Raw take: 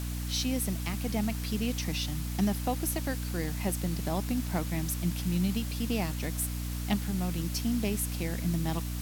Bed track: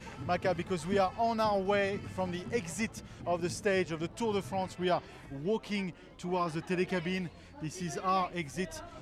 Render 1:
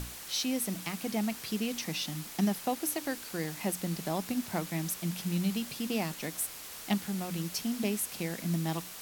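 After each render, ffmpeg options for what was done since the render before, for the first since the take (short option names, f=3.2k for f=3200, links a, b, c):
-af "bandreject=f=60:t=h:w=6,bandreject=f=120:t=h:w=6,bandreject=f=180:t=h:w=6,bandreject=f=240:t=h:w=6,bandreject=f=300:t=h:w=6"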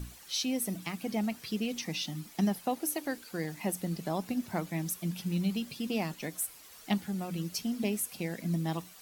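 -af "afftdn=nr=11:nf=-45"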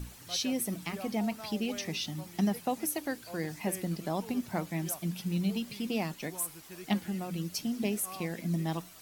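-filter_complex "[1:a]volume=-16dB[a];[0:a][a]amix=inputs=2:normalize=0"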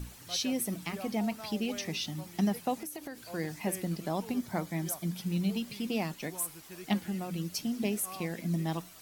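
-filter_complex "[0:a]asettb=1/sr,asplit=3[a][b][c];[a]atrim=end=2.804[d];[b]atrim=start=2.8:end=3.3,asetpts=PTS-STARTPTS,afade=t=in:d=0.004:c=qsin,afade=t=out:st=0.496:d=0.004:c=qsin,acompressor=threshold=-36dB:ratio=12:attack=3.2:release=140:knee=1:detection=peak[e];[c]atrim=start=3.296[f];[d][e]acrossfade=d=0.004:c1=hsin:c2=qsin[g];[g][f]acrossfade=d=0.004:c1=qsin:c2=hsin,asettb=1/sr,asplit=3[h][i][j];[h]atrim=end=4.364[k];[i]atrim=start=4.36:end=5.21,asetpts=PTS-STARTPTS,afade=t=in:d=0.004:c=qsin,afade=t=out:st=0.846:d=0.004:c=qsin,bandreject=f=2.7k:w=6.7[l];[j]atrim=start=5.206[m];[k][l]acrossfade=d=0.004:c1=hsin:c2=qsin[n];[n][m]acrossfade=d=0.004:c1=qsin:c2=hsin"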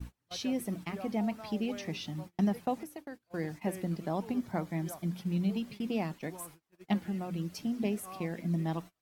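-af "agate=range=-29dB:threshold=-42dB:ratio=16:detection=peak,highshelf=f=3.3k:g=-12"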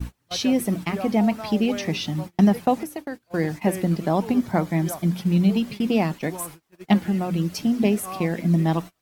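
-af "volume=12dB"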